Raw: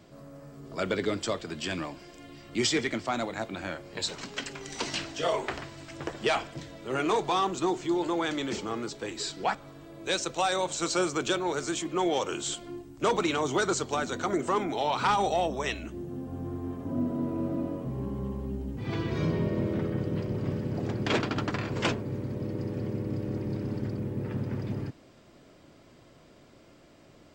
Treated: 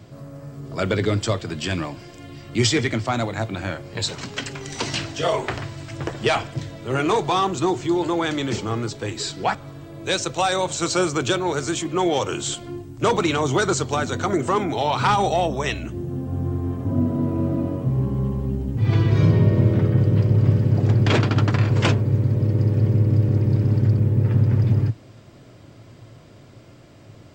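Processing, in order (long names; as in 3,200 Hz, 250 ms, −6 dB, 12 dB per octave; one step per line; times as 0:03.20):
parametric band 110 Hz +15 dB 0.64 octaves
level +6 dB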